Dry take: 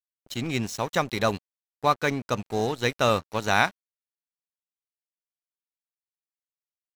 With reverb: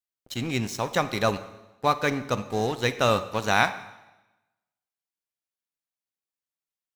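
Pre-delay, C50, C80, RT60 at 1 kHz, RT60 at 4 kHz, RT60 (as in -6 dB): 3 ms, 13.5 dB, 15.5 dB, 1.0 s, 0.95 s, 1.0 s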